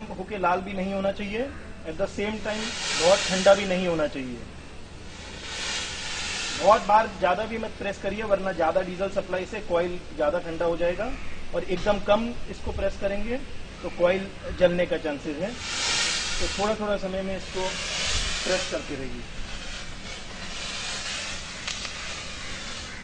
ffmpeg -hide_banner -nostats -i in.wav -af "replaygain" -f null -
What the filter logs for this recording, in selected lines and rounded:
track_gain = +6.5 dB
track_peak = 0.385